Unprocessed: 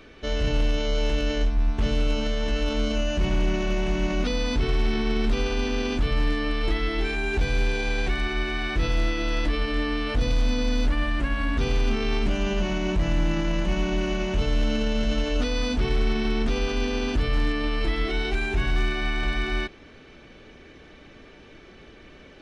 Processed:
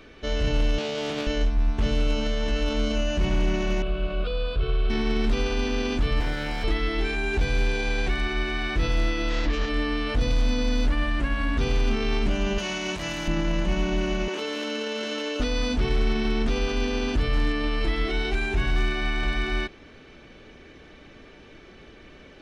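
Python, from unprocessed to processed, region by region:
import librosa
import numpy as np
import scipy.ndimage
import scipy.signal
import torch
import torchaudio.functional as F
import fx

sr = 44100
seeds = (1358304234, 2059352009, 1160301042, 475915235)

y = fx.chain(x, sr, fx.highpass(hz=120.0, slope=24),
    fx.doppler_dist(depth_ms=0.29), at=(0.78, 1.27))
y = fx.chain(y, sr, fx.high_shelf(hz=4700.0, db=-11.0),
    fx.fixed_phaser(hz=1300.0, stages=8), at=(3.82, 4.9))
y = fx.chain(y, sr, fx.lower_of_two(delay_ms=1.3),
    fx.highpass(hz=42.0, slope=12), at=(6.2, 6.64))
y = fx.chain(y, sr, fx.self_delay(depth_ms=0.17),
    fx.lowpass(hz=5900.0, slope=24), at=(9.29, 9.69))
y = fx.chain(y, sr, fx.highpass(hz=50.0, slope=12),
    fx.tilt_eq(slope=3.0), at=(12.58, 13.28))
y = fx.chain(y, sr, fx.highpass(hz=300.0, slope=24),
    fx.peak_eq(hz=680.0, db=-9.0, octaves=0.27),
    fx.env_flatten(amount_pct=70), at=(14.28, 15.4))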